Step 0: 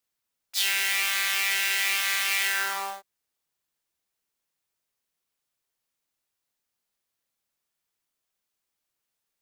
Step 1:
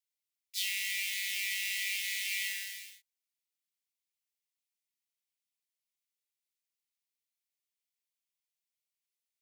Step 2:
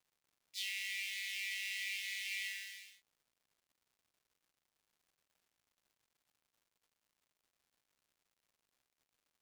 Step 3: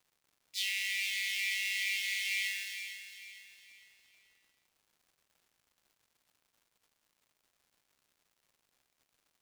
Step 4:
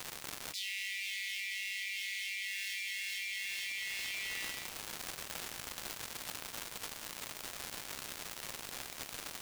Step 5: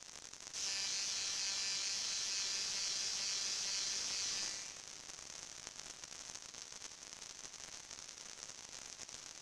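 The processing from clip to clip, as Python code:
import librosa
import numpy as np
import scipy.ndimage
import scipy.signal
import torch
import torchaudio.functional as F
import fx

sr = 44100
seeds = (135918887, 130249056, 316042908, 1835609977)

y1 = scipy.signal.sosfilt(scipy.signal.butter(16, 1900.0, 'highpass', fs=sr, output='sos'), x)
y1 = y1 * librosa.db_to_amplitude(-8.5)
y2 = fx.high_shelf(y1, sr, hz=7700.0, db=-11.0)
y2 = fx.dmg_crackle(y2, sr, seeds[0], per_s=250.0, level_db=-61.0)
y2 = y2 * librosa.db_to_amplitude(-4.5)
y3 = fx.echo_feedback(y2, sr, ms=455, feedback_pct=41, wet_db=-10.5)
y3 = y3 * librosa.db_to_amplitude(6.5)
y4 = fx.env_flatten(y3, sr, amount_pct=100)
y4 = y4 * librosa.db_to_amplitude(-7.0)
y5 = fx.self_delay(y4, sr, depth_ms=0.9)
y5 = fx.ladder_lowpass(y5, sr, hz=6700.0, resonance_pct=65)
y5 = y5 + 10.0 ** (-9.5 / 20.0) * np.pad(y5, (int(88 * sr / 1000.0), 0))[:len(y5)]
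y5 = y5 * librosa.db_to_amplitude(7.0)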